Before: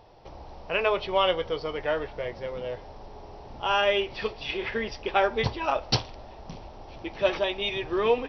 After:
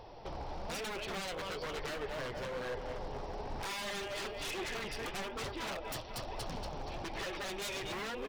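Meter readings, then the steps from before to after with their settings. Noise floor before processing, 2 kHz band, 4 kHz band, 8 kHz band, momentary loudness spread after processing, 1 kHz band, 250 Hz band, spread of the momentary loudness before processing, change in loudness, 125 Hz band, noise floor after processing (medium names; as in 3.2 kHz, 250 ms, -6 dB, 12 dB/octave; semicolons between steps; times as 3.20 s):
-46 dBFS, -9.5 dB, -10.0 dB, no reading, 5 LU, -12.0 dB, -9.0 dB, 21 LU, -12.5 dB, -9.0 dB, -45 dBFS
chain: in parallel at -10 dB: Schmitt trigger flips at -22.5 dBFS; on the sum: feedback delay 235 ms, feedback 43%, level -12 dB; compression 4:1, threshold -35 dBFS, peak gain reduction 15 dB; wavefolder -37 dBFS; flange 1.1 Hz, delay 1.8 ms, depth 5.8 ms, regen +65%; trim +7 dB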